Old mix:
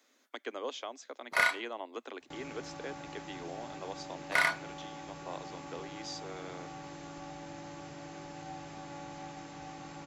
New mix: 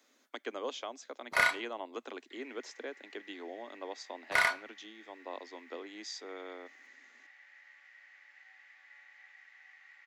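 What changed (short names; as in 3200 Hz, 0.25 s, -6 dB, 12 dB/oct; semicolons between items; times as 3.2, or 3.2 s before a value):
second sound: add ladder band-pass 2000 Hz, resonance 85%; master: add low shelf 80 Hz +10 dB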